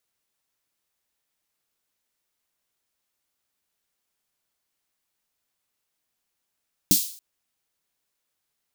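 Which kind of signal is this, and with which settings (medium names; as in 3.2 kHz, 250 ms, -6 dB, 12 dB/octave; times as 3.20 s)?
snare drum length 0.28 s, tones 190 Hz, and 290 Hz, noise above 3.8 kHz, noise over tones 2.5 dB, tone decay 0.12 s, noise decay 0.49 s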